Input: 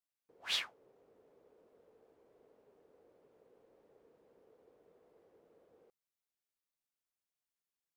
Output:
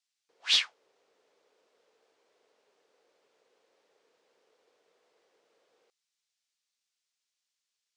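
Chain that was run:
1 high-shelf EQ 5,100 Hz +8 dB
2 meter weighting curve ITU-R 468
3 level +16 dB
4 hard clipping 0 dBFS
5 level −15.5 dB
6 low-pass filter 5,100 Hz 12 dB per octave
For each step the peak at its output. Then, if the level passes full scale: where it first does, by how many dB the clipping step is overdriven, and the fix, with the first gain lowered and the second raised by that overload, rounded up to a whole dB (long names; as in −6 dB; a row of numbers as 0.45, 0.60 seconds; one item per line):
−18.5, −9.0, +7.0, 0.0, −15.5, −15.0 dBFS
step 3, 7.0 dB
step 3 +9 dB, step 5 −8.5 dB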